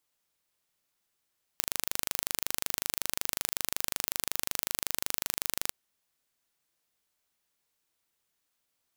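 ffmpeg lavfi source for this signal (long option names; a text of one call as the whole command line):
ffmpeg -f lavfi -i "aevalsrc='0.794*eq(mod(n,1736),0)':duration=4.11:sample_rate=44100" out.wav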